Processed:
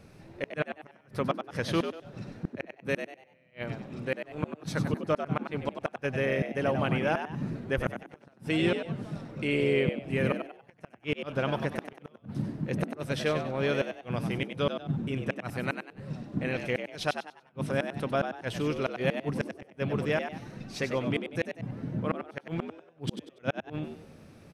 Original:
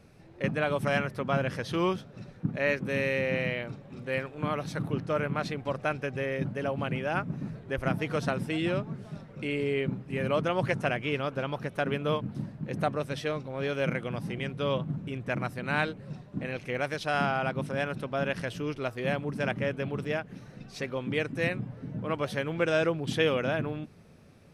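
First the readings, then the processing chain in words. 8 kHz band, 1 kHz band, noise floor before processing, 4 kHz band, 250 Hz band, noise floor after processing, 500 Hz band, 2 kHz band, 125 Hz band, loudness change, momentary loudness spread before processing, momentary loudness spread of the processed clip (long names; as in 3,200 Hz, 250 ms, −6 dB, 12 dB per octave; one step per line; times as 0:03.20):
0.0 dB, −3.0 dB, −51 dBFS, −1.0 dB, +0.5 dB, −60 dBFS, −1.5 dB, −3.0 dB, −1.0 dB, −1.0 dB, 9 LU, 12 LU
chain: gate with flip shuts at −19 dBFS, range −39 dB
echo with shifted repeats 96 ms, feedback 32%, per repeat +79 Hz, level −8 dB
level +3 dB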